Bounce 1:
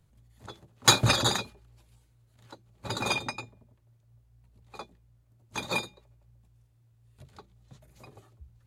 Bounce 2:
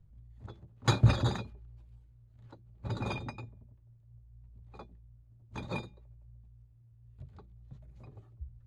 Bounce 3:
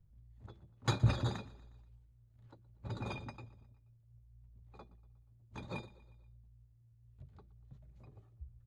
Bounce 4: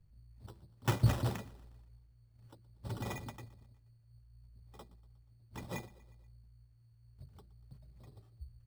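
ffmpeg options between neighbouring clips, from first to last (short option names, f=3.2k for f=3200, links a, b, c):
-af "aemphasis=mode=reproduction:type=riaa,volume=-8.5dB"
-af "aecho=1:1:120|240|360|480:0.0944|0.0519|0.0286|0.0157,volume=-6dB"
-af "acrusher=samples=10:mix=1:aa=0.000001,volume=1dB"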